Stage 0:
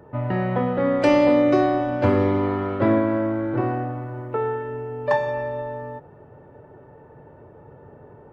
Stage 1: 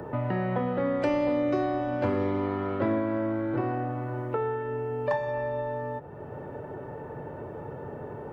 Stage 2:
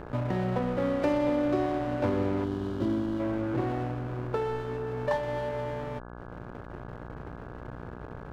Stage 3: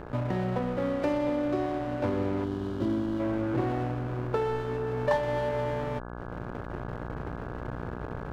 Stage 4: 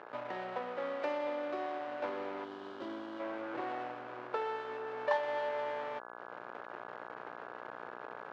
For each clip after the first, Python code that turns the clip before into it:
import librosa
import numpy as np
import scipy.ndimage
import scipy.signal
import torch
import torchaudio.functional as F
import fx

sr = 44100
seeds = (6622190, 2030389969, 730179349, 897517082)

y1 = fx.band_squash(x, sr, depth_pct=70)
y1 = F.gain(torch.from_numpy(y1), -6.5).numpy()
y2 = fx.backlash(y1, sr, play_db=-30.0)
y2 = fx.spec_box(y2, sr, start_s=2.44, length_s=0.76, low_hz=400.0, high_hz=2800.0, gain_db=-10)
y2 = fx.dmg_buzz(y2, sr, base_hz=60.0, harmonics=28, level_db=-44.0, tilt_db=-3, odd_only=False)
y3 = fx.rider(y2, sr, range_db=5, speed_s=2.0)
y4 = fx.bandpass_edges(y3, sr, low_hz=630.0, high_hz=4200.0)
y4 = F.gain(torch.from_numpy(y4), -2.5).numpy()